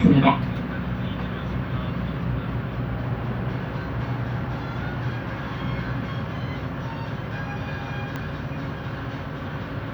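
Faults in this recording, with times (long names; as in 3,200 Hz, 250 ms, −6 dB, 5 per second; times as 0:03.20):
0:08.16: click −17 dBFS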